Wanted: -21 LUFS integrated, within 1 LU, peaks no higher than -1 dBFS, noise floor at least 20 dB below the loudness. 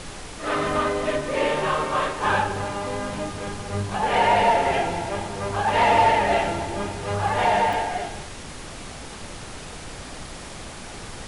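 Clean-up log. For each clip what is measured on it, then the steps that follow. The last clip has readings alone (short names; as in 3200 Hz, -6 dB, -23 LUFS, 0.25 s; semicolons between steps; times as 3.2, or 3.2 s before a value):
dropouts 1; longest dropout 1.1 ms; noise floor -38 dBFS; noise floor target -43 dBFS; loudness -23.0 LUFS; peak -8.5 dBFS; loudness target -21.0 LUFS
-> interpolate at 7.73, 1.1 ms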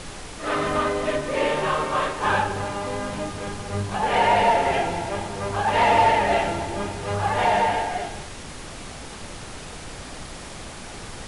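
dropouts 0; noise floor -38 dBFS; noise floor target -43 dBFS
-> noise print and reduce 6 dB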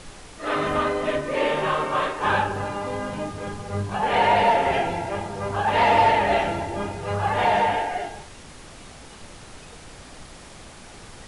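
noise floor -44 dBFS; loudness -23.0 LUFS; peak -8.5 dBFS; loudness target -21.0 LUFS
-> gain +2 dB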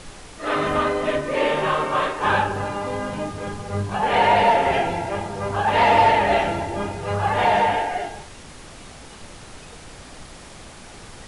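loudness -21.0 LUFS; peak -6.5 dBFS; noise floor -42 dBFS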